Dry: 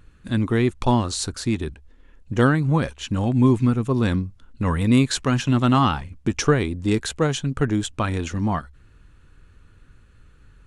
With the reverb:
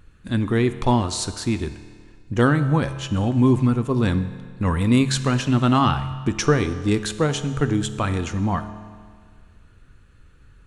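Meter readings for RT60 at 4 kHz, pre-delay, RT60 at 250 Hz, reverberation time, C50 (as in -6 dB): 1.7 s, 7 ms, 1.8 s, 1.8 s, 12.0 dB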